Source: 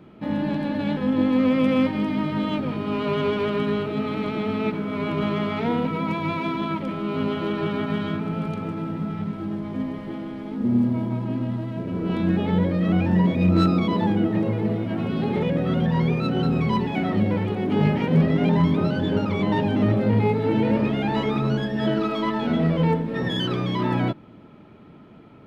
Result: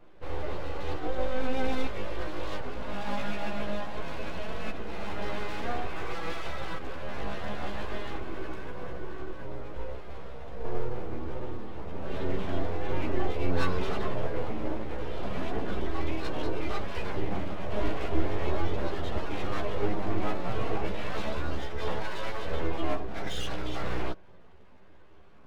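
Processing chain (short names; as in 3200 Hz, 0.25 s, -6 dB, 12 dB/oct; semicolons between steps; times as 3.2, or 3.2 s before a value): full-wave rectifier; chorus voices 6, 0.15 Hz, delay 13 ms, depth 3.3 ms; gain -4 dB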